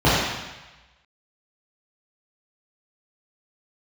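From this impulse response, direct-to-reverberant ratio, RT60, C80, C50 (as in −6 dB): −11.0 dB, 1.1 s, 0.5 dB, −2.0 dB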